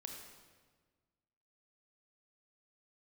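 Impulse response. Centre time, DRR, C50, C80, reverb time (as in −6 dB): 52 ms, 2.0 dB, 3.0 dB, 4.5 dB, 1.5 s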